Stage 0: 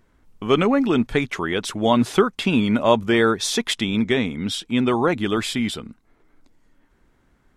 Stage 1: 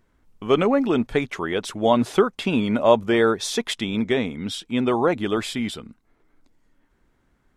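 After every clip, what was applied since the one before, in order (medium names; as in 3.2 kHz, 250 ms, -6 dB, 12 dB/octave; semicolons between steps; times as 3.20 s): dynamic bell 590 Hz, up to +6 dB, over -32 dBFS, Q 0.96; trim -4 dB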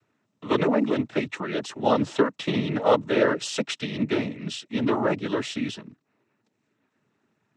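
noise-vocoded speech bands 12; trim -3 dB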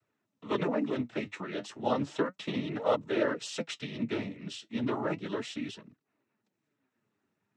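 flange 0.34 Hz, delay 1.4 ms, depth 9.5 ms, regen +59%; trim -4 dB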